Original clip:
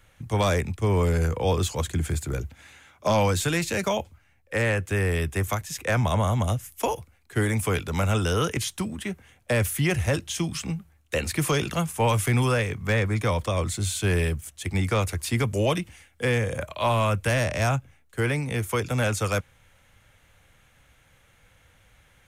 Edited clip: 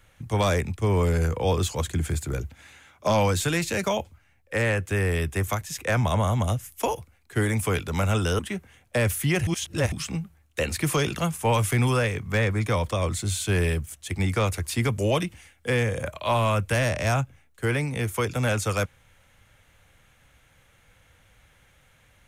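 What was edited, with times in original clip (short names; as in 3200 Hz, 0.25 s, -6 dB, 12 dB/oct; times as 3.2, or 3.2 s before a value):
8.39–8.94 cut
10.02–10.47 reverse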